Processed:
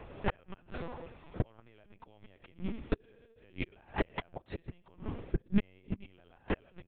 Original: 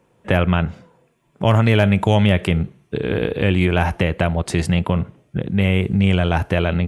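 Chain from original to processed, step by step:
high-pass filter 160 Hz 12 dB per octave
downward compressor 6 to 1, threshold −33 dBFS, peak gain reduction 19.5 dB
echo with shifted repeats 88 ms, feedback 36%, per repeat +39 Hz, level −13.5 dB
gate with flip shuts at −25 dBFS, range −37 dB
linear-prediction vocoder at 8 kHz pitch kept
level +12 dB

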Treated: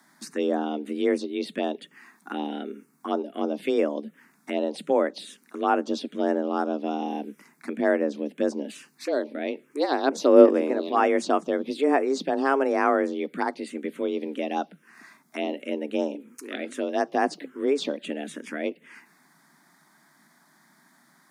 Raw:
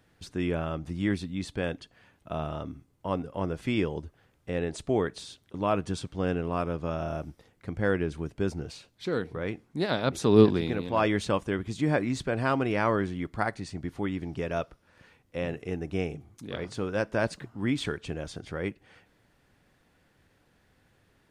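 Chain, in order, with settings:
frequency shifter +140 Hz
phaser swept by the level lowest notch 470 Hz, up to 4,000 Hz, full sweep at −22 dBFS
one half of a high-frequency compander encoder only
level +4.5 dB

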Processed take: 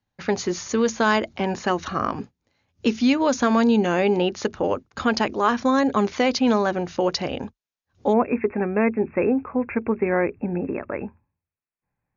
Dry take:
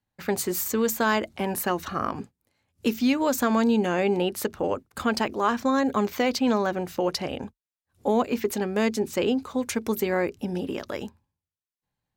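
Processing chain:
tape wow and flutter 28 cents
linear-phase brick-wall low-pass 7,000 Hz, from 0:08.12 2,700 Hz
level +3.5 dB

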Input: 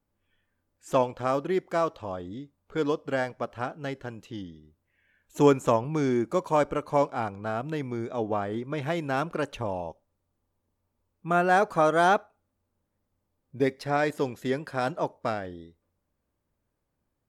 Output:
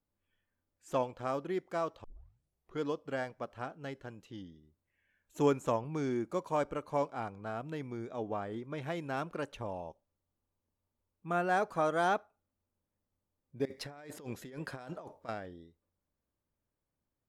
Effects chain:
0:02.04: tape start 0.77 s
0:13.65–0:15.29: compressor whose output falls as the input rises −37 dBFS, ratio −1
level −8.5 dB

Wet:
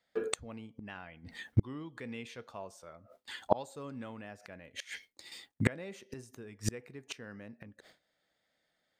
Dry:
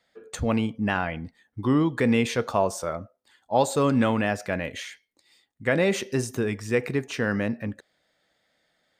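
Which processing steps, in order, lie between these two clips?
noise gate with hold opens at −50 dBFS
0:00.84–0:03.63: parametric band 2,900 Hz +5 dB 1.6 octaves
gate with flip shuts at −25 dBFS, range −34 dB
level +12 dB

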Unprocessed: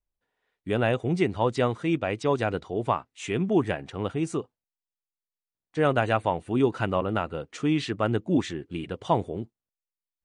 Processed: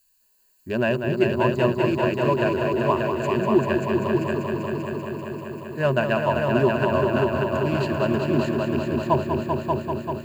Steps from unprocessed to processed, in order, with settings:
adaptive Wiener filter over 15 samples
background noise blue −67 dBFS
EQ curve with evenly spaced ripples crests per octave 1.4, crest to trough 14 dB
on a send: echo machine with several playback heads 195 ms, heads all three, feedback 70%, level −7.5 dB
on the sum: level −1 dB

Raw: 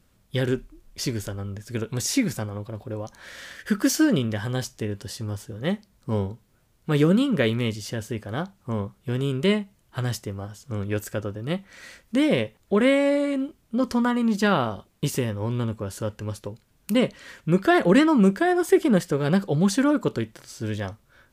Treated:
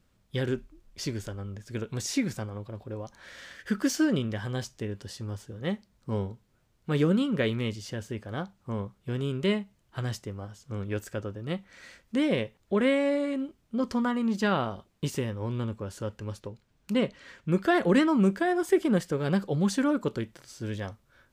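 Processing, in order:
parametric band 12,000 Hz −7.5 dB 0.84 octaves, from 0:16.40 −14.5 dB, from 0:17.52 −3.5 dB
level −5 dB

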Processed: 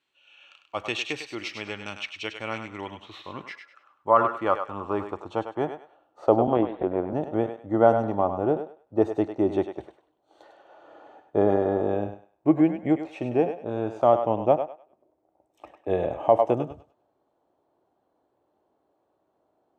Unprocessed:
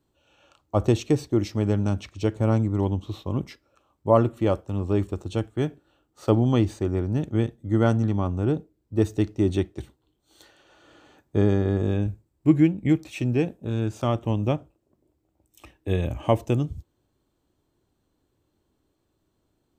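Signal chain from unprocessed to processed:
0:06.47–0:07.13: linear-prediction vocoder at 8 kHz pitch kept
band-pass filter sweep 2,500 Hz → 700 Hz, 0:02.41–0:06.09
on a send: feedback echo with a high-pass in the loop 100 ms, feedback 28%, high-pass 570 Hz, level −7 dB
on the sum: boost into a limiter +16.5 dB
level −5 dB

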